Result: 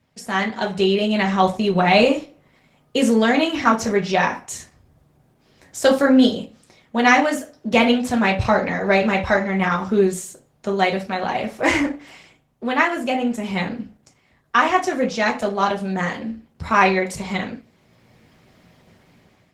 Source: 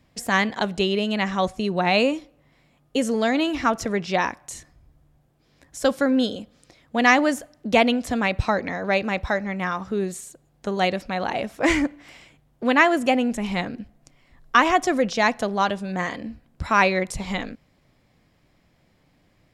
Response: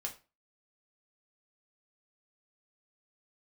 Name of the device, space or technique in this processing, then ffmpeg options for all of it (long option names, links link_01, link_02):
far-field microphone of a smart speaker: -filter_complex "[1:a]atrim=start_sample=2205[link_01];[0:a][link_01]afir=irnorm=-1:irlink=0,highpass=91,dynaudnorm=framelen=300:gausssize=5:maxgain=14dB,volume=-1dB" -ar 48000 -c:a libopus -b:a 16k